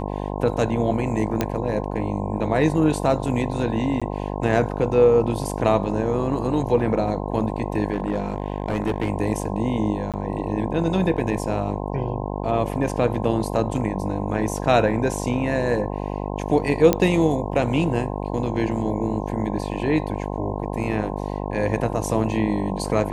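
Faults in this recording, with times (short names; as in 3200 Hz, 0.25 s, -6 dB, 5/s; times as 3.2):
buzz 50 Hz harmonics 21 -28 dBFS
1.41 pop -7 dBFS
4–4.02 gap 16 ms
7.93–9.1 clipped -17 dBFS
10.12–10.14 gap 17 ms
16.93 pop -4 dBFS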